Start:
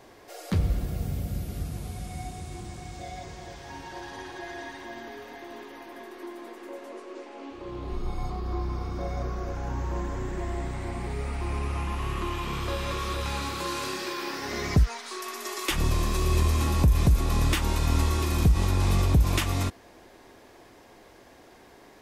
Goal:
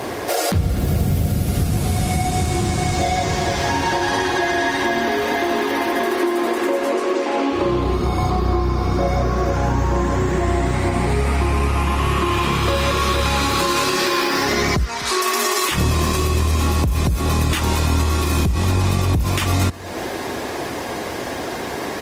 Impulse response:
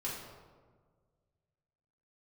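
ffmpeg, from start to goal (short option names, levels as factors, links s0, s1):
-filter_complex "[0:a]highpass=f=63:w=0.5412,highpass=f=63:w=1.3066,acompressor=threshold=0.00794:ratio=6,asplit=2[s0][s1];[s1]aecho=0:1:252:0.0891[s2];[s0][s2]amix=inputs=2:normalize=0,alimiter=level_in=47.3:limit=0.891:release=50:level=0:latency=1,volume=0.422" -ar 48000 -c:a libopus -b:a 24k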